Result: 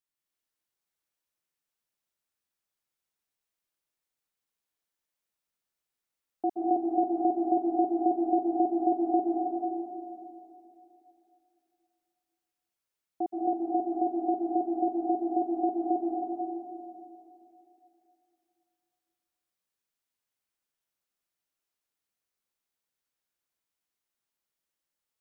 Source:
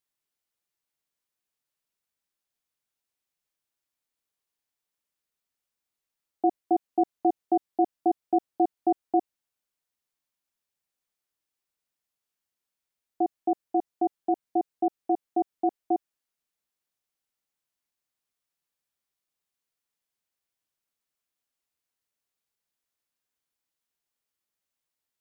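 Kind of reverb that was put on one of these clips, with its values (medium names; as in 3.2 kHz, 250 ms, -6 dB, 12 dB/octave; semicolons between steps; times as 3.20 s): plate-style reverb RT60 2.9 s, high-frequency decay 0.65×, pre-delay 115 ms, DRR -4 dB; trim -6 dB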